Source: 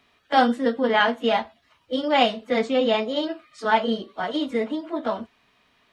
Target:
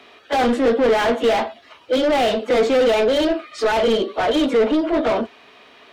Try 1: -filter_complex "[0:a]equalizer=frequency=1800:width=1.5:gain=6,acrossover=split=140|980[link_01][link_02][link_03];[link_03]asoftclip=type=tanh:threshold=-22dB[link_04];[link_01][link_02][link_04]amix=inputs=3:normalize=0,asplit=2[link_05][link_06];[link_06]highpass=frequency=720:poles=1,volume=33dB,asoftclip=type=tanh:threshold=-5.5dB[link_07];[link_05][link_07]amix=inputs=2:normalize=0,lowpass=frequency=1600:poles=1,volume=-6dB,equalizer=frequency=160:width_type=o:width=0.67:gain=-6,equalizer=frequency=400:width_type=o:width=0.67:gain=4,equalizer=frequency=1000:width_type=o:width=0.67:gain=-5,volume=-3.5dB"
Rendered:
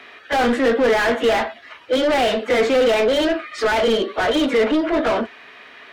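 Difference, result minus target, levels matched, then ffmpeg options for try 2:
2,000 Hz band +4.0 dB
-filter_complex "[0:a]equalizer=frequency=1800:width=1.5:gain=-4.5,acrossover=split=140|980[link_01][link_02][link_03];[link_03]asoftclip=type=tanh:threshold=-22dB[link_04];[link_01][link_02][link_04]amix=inputs=3:normalize=0,asplit=2[link_05][link_06];[link_06]highpass=frequency=720:poles=1,volume=33dB,asoftclip=type=tanh:threshold=-5.5dB[link_07];[link_05][link_07]amix=inputs=2:normalize=0,lowpass=frequency=1600:poles=1,volume=-6dB,equalizer=frequency=160:width_type=o:width=0.67:gain=-6,equalizer=frequency=400:width_type=o:width=0.67:gain=4,equalizer=frequency=1000:width_type=o:width=0.67:gain=-5,volume=-3.5dB"

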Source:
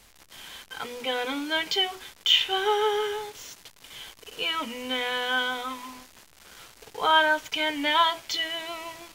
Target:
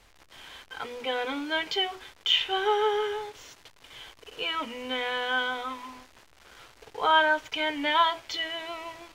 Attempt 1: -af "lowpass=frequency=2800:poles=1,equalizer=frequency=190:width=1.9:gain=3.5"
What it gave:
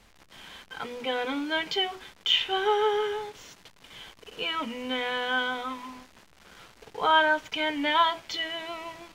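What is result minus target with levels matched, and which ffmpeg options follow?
250 Hz band +2.5 dB
-af "lowpass=frequency=2800:poles=1,equalizer=frequency=190:width=1.9:gain=-6"

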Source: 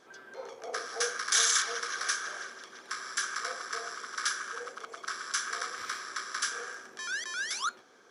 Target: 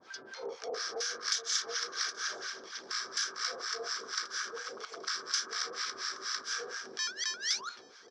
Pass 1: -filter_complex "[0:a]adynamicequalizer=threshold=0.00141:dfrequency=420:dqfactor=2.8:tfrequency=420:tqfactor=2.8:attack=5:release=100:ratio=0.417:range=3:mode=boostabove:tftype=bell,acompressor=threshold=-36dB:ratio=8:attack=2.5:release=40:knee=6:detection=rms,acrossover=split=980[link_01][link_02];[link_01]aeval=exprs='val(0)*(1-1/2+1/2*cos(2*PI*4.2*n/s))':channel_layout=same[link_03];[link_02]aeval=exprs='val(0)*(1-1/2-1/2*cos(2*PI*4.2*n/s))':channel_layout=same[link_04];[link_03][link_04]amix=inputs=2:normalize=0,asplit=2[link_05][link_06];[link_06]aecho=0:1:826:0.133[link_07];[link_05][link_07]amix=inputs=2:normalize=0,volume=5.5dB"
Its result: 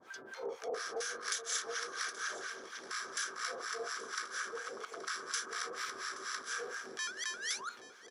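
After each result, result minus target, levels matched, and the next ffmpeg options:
echo-to-direct +11 dB; 4,000 Hz band −3.5 dB
-filter_complex "[0:a]adynamicequalizer=threshold=0.00141:dfrequency=420:dqfactor=2.8:tfrequency=420:tqfactor=2.8:attack=5:release=100:ratio=0.417:range=3:mode=boostabove:tftype=bell,acompressor=threshold=-36dB:ratio=8:attack=2.5:release=40:knee=6:detection=rms,acrossover=split=980[link_01][link_02];[link_01]aeval=exprs='val(0)*(1-1/2+1/2*cos(2*PI*4.2*n/s))':channel_layout=same[link_03];[link_02]aeval=exprs='val(0)*(1-1/2-1/2*cos(2*PI*4.2*n/s))':channel_layout=same[link_04];[link_03][link_04]amix=inputs=2:normalize=0,asplit=2[link_05][link_06];[link_06]aecho=0:1:826:0.0376[link_07];[link_05][link_07]amix=inputs=2:normalize=0,volume=5.5dB"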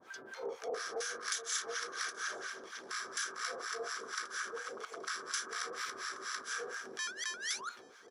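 4,000 Hz band −3.5 dB
-filter_complex "[0:a]adynamicequalizer=threshold=0.00141:dfrequency=420:dqfactor=2.8:tfrequency=420:tqfactor=2.8:attack=5:release=100:ratio=0.417:range=3:mode=boostabove:tftype=bell,acompressor=threshold=-36dB:ratio=8:attack=2.5:release=40:knee=6:detection=rms,lowpass=frequency=5100:width_type=q:width=3.2,acrossover=split=980[link_01][link_02];[link_01]aeval=exprs='val(0)*(1-1/2+1/2*cos(2*PI*4.2*n/s))':channel_layout=same[link_03];[link_02]aeval=exprs='val(0)*(1-1/2-1/2*cos(2*PI*4.2*n/s))':channel_layout=same[link_04];[link_03][link_04]amix=inputs=2:normalize=0,asplit=2[link_05][link_06];[link_06]aecho=0:1:826:0.0376[link_07];[link_05][link_07]amix=inputs=2:normalize=0,volume=5.5dB"

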